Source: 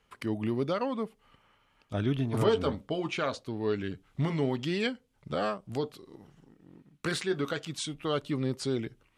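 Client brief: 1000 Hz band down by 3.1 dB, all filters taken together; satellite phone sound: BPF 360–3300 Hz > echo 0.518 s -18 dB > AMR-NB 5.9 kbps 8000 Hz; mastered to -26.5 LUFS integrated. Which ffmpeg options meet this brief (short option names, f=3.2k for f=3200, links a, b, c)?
-af "highpass=360,lowpass=3.3k,equalizer=f=1k:t=o:g=-4,aecho=1:1:518:0.126,volume=10.5dB" -ar 8000 -c:a libopencore_amrnb -b:a 5900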